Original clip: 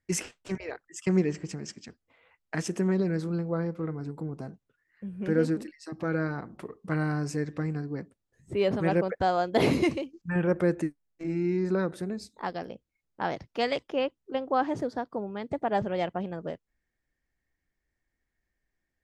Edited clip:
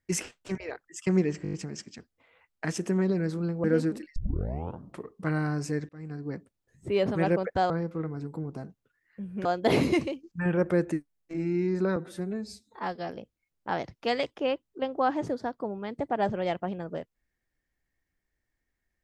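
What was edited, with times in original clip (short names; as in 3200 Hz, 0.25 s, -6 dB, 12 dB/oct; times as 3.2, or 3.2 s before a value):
1.43 stutter 0.02 s, 6 plays
3.54–5.29 move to 9.35
5.81 tape start 0.83 s
7.54–7.96 fade in linear
11.86–12.61 stretch 1.5×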